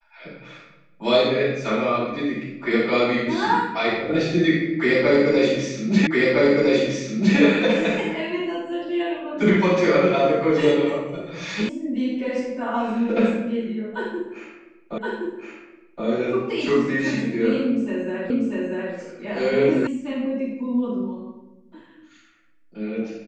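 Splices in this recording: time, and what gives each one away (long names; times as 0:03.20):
0:06.07: the same again, the last 1.31 s
0:11.69: cut off before it has died away
0:14.98: the same again, the last 1.07 s
0:18.30: the same again, the last 0.64 s
0:19.87: cut off before it has died away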